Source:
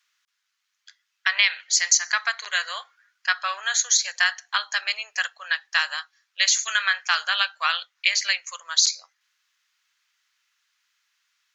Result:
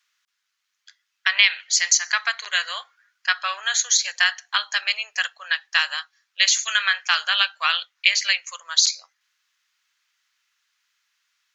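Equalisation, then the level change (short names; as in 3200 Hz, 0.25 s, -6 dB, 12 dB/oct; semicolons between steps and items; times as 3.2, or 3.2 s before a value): dynamic EQ 2900 Hz, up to +5 dB, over -37 dBFS, Q 1.7; 0.0 dB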